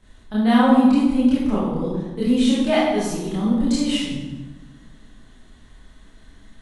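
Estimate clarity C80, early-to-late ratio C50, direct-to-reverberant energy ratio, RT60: 2.0 dB, -1.0 dB, -9.5 dB, 1.2 s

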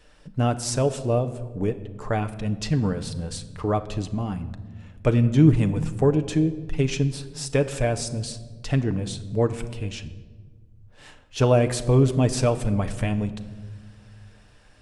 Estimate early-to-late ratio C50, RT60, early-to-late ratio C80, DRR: 14.0 dB, 1.5 s, 15.5 dB, 7.5 dB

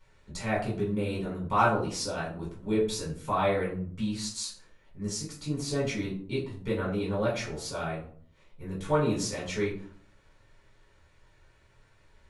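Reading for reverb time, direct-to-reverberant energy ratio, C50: 0.50 s, -5.0 dB, 7.0 dB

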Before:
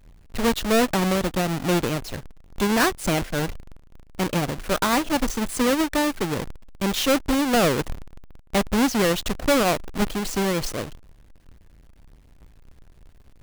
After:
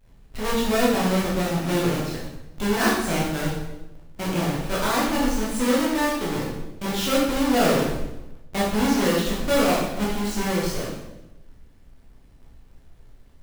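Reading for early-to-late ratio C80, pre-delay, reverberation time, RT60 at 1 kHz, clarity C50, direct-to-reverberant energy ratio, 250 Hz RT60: 4.5 dB, 12 ms, 0.95 s, 0.85 s, 1.0 dB, -6.0 dB, 1.1 s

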